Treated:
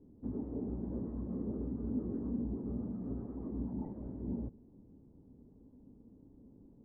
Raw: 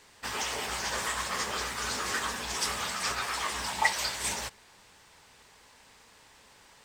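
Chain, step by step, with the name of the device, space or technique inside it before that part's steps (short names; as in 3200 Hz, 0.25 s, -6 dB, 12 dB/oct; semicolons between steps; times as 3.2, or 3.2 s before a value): overdriven synthesiser ladder filter (soft clip -28.5 dBFS, distortion -11 dB; ladder low-pass 310 Hz, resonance 55%); gain +16 dB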